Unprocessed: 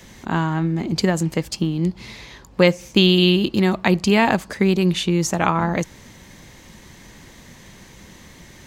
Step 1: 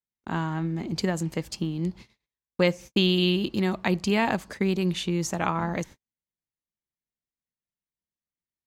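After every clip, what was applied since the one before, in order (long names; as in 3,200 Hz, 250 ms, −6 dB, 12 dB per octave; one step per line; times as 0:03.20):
noise gate −33 dBFS, range −50 dB
level −7.5 dB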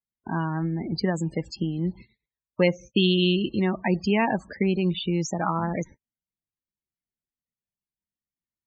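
spectral peaks only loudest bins 32
level +1.5 dB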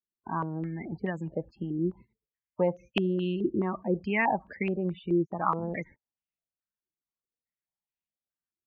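low-pass on a step sequencer 4.7 Hz 360–2,700 Hz
level −8 dB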